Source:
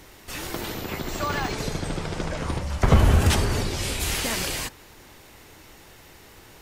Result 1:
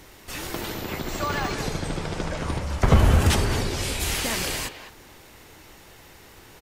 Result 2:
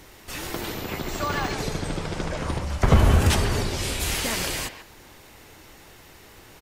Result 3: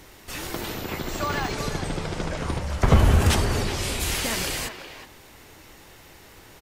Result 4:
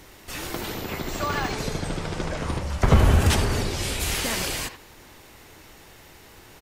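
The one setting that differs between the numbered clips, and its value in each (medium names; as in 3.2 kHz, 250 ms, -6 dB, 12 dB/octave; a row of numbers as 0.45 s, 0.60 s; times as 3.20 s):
speakerphone echo, time: 210 ms, 140 ms, 370 ms, 80 ms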